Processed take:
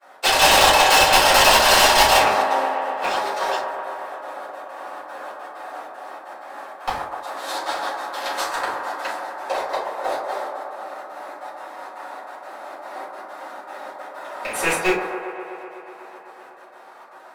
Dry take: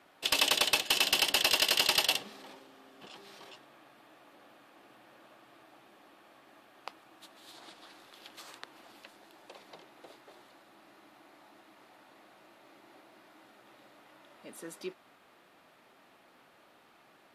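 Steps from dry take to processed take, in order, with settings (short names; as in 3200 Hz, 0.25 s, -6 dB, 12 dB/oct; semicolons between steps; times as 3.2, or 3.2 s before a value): rattling part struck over -54 dBFS, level -27 dBFS; weighting filter A; expander -53 dBFS; bell 2900 Hz -14.5 dB 1.2 oct; in parallel at -9.5 dB: sample-rate reducer 9100 Hz; on the sum: step gate "xx.x.xxxx.x" 192 bpm -12 dB; overdrive pedal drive 32 dB, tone 7100 Hz, clips at -10 dBFS; on a send: band-limited delay 0.125 s, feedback 79%, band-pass 790 Hz, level -6 dB; on the sum: shoebox room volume 190 m³, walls furnished, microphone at 5.2 m; gain -4.5 dB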